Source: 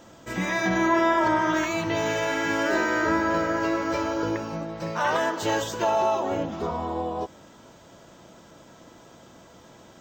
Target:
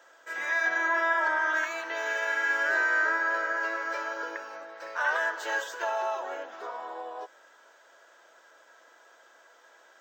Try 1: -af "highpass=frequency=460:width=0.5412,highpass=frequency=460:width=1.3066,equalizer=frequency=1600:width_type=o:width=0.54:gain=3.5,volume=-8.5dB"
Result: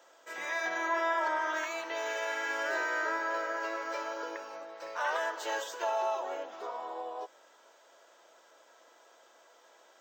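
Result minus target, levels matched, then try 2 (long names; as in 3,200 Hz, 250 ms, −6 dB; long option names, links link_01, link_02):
2,000 Hz band −3.0 dB
-af "highpass=frequency=460:width=0.5412,highpass=frequency=460:width=1.3066,equalizer=frequency=1600:width_type=o:width=0.54:gain=13,volume=-8.5dB"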